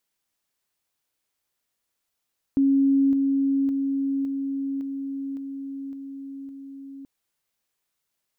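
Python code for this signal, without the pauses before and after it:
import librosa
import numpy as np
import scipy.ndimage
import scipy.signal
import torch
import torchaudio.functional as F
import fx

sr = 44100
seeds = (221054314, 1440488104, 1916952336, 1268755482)

y = fx.level_ladder(sr, hz=274.0, from_db=-16.0, step_db=-3.0, steps=8, dwell_s=0.56, gap_s=0.0)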